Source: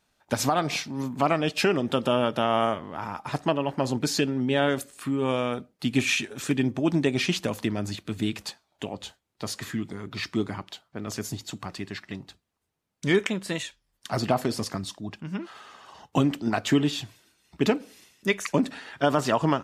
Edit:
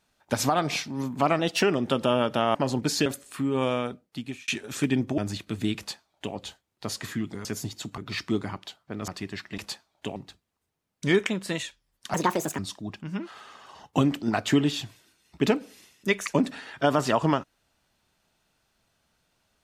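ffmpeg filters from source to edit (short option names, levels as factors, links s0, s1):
-filter_complex "[0:a]asplit=14[s0][s1][s2][s3][s4][s5][s6][s7][s8][s9][s10][s11][s12][s13];[s0]atrim=end=1.394[s14];[s1]atrim=start=1.39:end=1.65,asetpts=PTS-STARTPTS,asetrate=48069,aresample=44100,atrim=end_sample=10519,asetpts=PTS-STARTPTS[s15];[s2]atrim=start=1.646:end=2.572[s16];[s3]atrim=start=3.728:end=4.242[s17];[s4]atrim=start=4.728:end=6.15,asetpts=PTS-STARTPTS,afade=t=out:st=0.692:d=0.73[s18];[s5]atrim=start=6.15:end=6.852,asetpts=PTS-STARTPTS,afade=t=in:d=0.004:c=hsin[s19];[s6]atrim=start=7.758:end=10.032[s20];[s7]atrim=start=11.128:end=11.662[s21];[s8]atrim=start=10.028:end=11.132[s22];[s9]atrim=start=11.658:end=12.162[s23];[s10]atrim=start=8.348:end=8.932[s24];[s11]atrim=start=12.158:end=14.144[s25];[s12]atrim=start=14.14:end=14.78,asetpts=PTS-STARTPTS,asetrate=63063,aresample=44100,atrim=end_sample=19737,asetpts=PTS-STARTPTS[s26];[s13]atrim=start=14.776[s27];[s14][s15]acrossfade=d=0.004:c1=hsin:c2=hsin[s28];[s28][s16]acrossfade=d=0.004:c1=hsin:c2=hsin[s29];[s29][s17]acrossfade=d=0.004:c1=hsin:c2=hsin[s30];[s18][s19]concat=n=2:v=0:a=1[s31];[s30][s31]acrossfade=d=0.004:c1=hsin:c2=hsin[s32];[s32][s20]acrossfade=d=0.004:c1=hsin:c2=hsin[s33];[s33][s21]acrossfade=d=0.004:c1=hsin:c2=hsin[s34];[s34][s22]acrossfade=d=0.004:c1=hsin:c2=hsin[s35];[s35][s23]acrossfade=d=0.004:c1=hsin:c2=hsin[s36];[s36][s24]acrossfade=d=0.004:c1=hsin:c2=hsin[s37];[s37][s25]acrossfade=d=0.004:c1=hsin:c2=hsin[s38];[s38][s26]acrossfade=d=0.004:c1=hsin:c2=hsin[s39];[s39][s27]acrossfade=d=0.004:c1=hsin:c2=hsin"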